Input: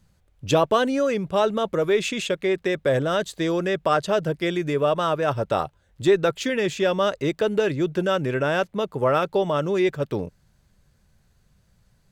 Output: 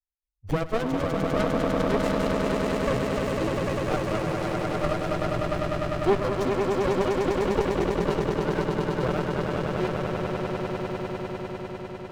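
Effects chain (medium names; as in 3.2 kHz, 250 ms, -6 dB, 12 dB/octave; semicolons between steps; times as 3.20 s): expander on every frequency bin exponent 3; echo with a slow build-up 100 ms, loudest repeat 8, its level -5.5 dB; sliding maximum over 33 samples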